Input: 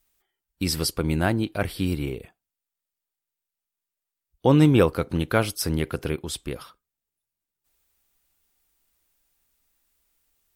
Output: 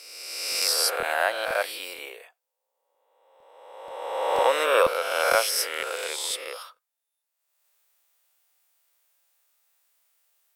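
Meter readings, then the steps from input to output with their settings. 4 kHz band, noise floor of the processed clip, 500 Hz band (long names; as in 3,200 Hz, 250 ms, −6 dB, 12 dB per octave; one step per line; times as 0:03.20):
+6.0 dB, −83 dBFS, +1.0 dB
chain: peak hold with a rise ahead of every peak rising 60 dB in 1.64 s
Chebyshev high-pass filter 530 Hz, order 4
regular buffer underruns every 0.48 s, samples 1,024, repeat, from 0:00.50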